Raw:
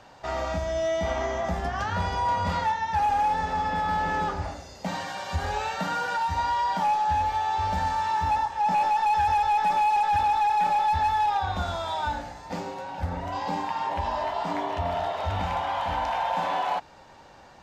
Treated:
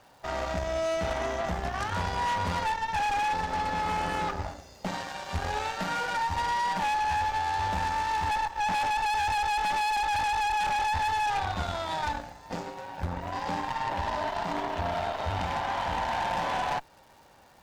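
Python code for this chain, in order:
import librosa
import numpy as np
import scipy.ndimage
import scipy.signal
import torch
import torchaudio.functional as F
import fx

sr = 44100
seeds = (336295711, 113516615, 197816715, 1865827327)

y = fx.cheby_harmonics(x, sr, harmonics=(3, 4, 5, 7), levels_db=(-9, -18, -9, -15), full_scale_db=-17.0)
y = fx.dmg_crackle(y, sr, seeds[0], per_s=570.0, level_db=-51.0)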